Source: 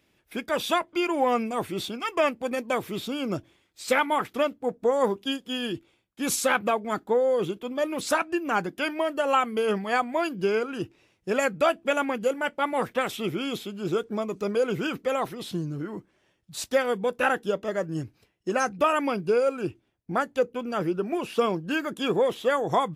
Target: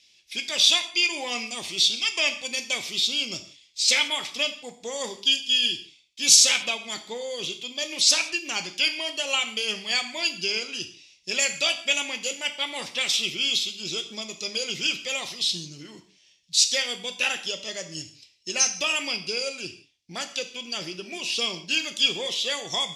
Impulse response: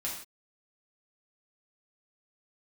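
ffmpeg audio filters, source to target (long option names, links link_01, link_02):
-filter_complex "[0:a]aexciter=amount=14.7:drive=3.4:freq=2200,lowpass=frequency=5500:width_type=q:width=2,asplit=2[link_01][link_02];[1:a]atrim=start_sample=2205[link_03];[link_02][link_03]afir=irnorm=-1:irlink=0,volume=-6dB[link_04];[link_01][link_04]amix=inputs=2:normalize=0,volume=-14dB"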